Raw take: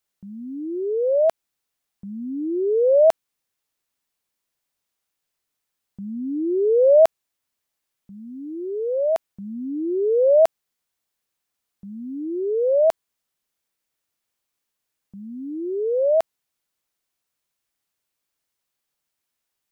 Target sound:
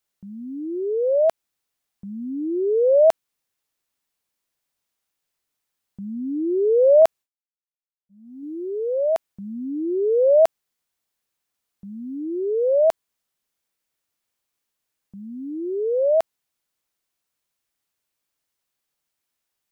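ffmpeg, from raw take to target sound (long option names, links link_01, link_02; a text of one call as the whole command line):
ffmpeg -i in.wav -filter_complex "[0:a]asettb=1/sr,asplit=3[link_01][link_02][link_03];[link_01]atrim=end=7.024[link_04];[link_02]atrim=start=7.02:end=8.43,asetpts=PTS-STARTPTS,afade=type=in:duration=0.004:curve=qsin,afade=type=out:start_time=1.406:duration=0.004:curve=qsin,agate=range=-33dB:threshold=-32dB:ratio=3:detection=peak[link_05];[link_03]atrim=start=8.426[link_06];[link_04][link_05]acrossfade=duration=0.004:curve1=hsin:curve2=qsin[link_07];[link_07][link_06]acrossfade=duration=0.004:curve1=qsin:curve2=hsin" out.wav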